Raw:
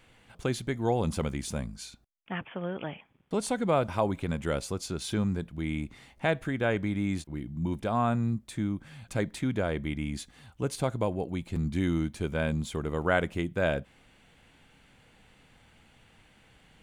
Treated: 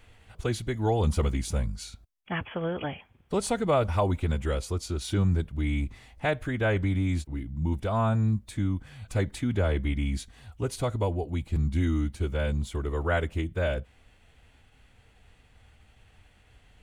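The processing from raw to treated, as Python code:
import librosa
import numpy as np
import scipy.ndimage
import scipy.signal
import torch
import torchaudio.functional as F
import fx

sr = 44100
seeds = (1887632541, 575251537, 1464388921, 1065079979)

y = fx.low_shelf_res(x, sr, hz=120.0, db=8.5, q=1.5)
y = fx.pitch_keep_formants(y, sr, semitones=-1.0)
y = fx.rider(y, sr, range_db=10, speed_s=2.0)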